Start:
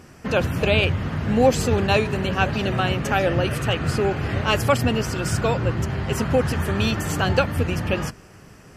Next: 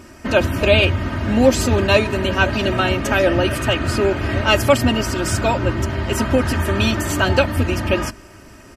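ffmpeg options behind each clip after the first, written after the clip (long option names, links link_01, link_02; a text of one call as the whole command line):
ffmpeg -i in.wav -af "aecho=1:1:3.2:0.68,volume=3.5dB" out.wav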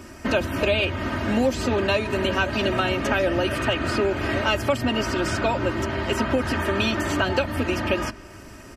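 ffmpeg -i in.wav -filter_complex "[0:a]acrossover=split=220|5000[link_01][link_02][link_03];[link_01]acompressor=threshold=-31dB:ratio=4[link_04];[link_02]acompressor=threshold=-20dB:ratio=4[link_05];[link_03]acompressor=threshold=-46dB:ratio=4[link_06];[link_04][link_05][link_06]amix=inputs=3:normalize=0" out.wav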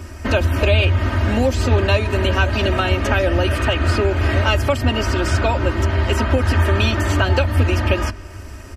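ffmpeg -i in.wav -af "lowshelf=frequency=110:width_type=q:width=3:gain=7,volume=3.5dB" out.wav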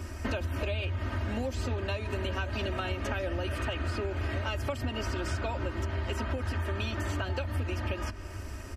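ffmpeg -i in.wav -af "acompressor=threshold=-24dB:ratio=6,volume=-5.5dB" out.wav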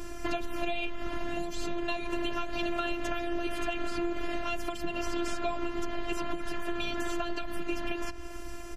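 ffmpeg -i in.wav -af "afftfilt=real='hypot(re,im)*cos(PI*b)':imag='0':win_size=512:overlap=0.75,volume=5dB" out.wav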